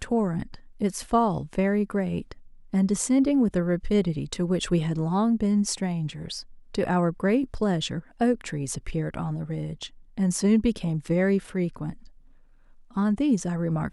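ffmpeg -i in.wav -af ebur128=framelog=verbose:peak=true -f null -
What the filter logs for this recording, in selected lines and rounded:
Integrated loudness:
  I:         -25.9 LUFS
  Threshold: -36.4 LUFS
Loudness range:
  LRA:         2.8 LU
  Threshold: -46.2 LUFS
  LRA low:   -27.4 LUFS
  LRA high:  -24.5 LUFS
True peak:
  Peak:      -10.9 dBFS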